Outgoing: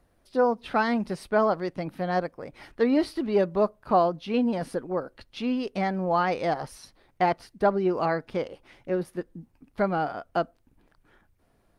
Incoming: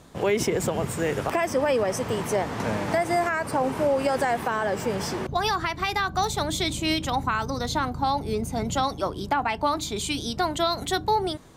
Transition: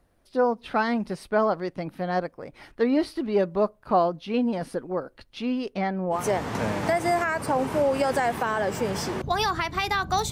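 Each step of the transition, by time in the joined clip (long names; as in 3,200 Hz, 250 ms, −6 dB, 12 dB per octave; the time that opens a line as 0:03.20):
outgoing
0:05.73–0:06.26: low-pass filter 6,200 Hz → 1,700 Hz
0:06.18: continue with incoming from 0:02.23, crossfade 0.16 s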